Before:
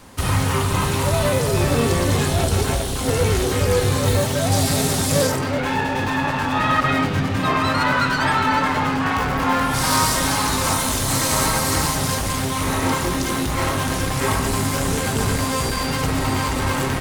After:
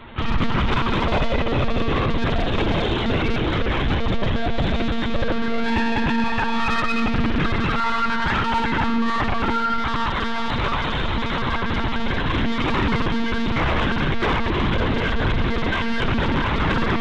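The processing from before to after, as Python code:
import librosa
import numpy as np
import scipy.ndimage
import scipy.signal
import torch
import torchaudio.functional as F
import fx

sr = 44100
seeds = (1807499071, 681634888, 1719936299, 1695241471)

p1 = fx.peak_eq(x, sr, hz=420.0, db=-4.5, octaves=1.5)
p2 = (np.mod(10.0 ** (17.0 / 20.0) * p1 + 1.0, 2.0) - 1.0) / 10.0 ** (17.0 / 20.0)
p3 = p1 + F.gain(torch.from_numpy(p2), -10.0).numpy()
p4 = fx.rider(p3, sr, range_db=10, speed_s=0.5)
p5 = p4 + 0.78 * np.pad(p4, (int(7.1 * sr / 1000.0), 0))[:len(p4)]
p6 = fx.echo_feedback(p5, sr, ms=80, feedback_pct=54, wet_db=-8)
p7 = fx.lpc_monotone(p6, sr, seeds[0], pitch_hz=230.0, order=16)
y = 10.0 ** (-13.5 / 20.0) * np.tanh(p7 / 10.0 ** (-13.5 / 20.0))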